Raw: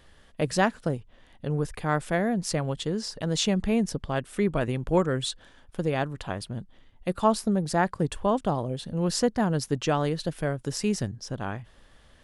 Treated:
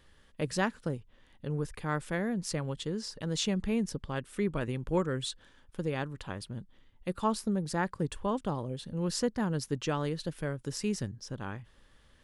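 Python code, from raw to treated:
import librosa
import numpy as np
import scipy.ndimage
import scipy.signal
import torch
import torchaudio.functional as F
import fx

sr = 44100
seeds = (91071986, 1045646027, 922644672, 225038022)

y = fx.peak_eq(x, sr, hz=690.0, db=-8.5, octaves=0.31)
y = y * librosa.db_to_amplitude(-5.5)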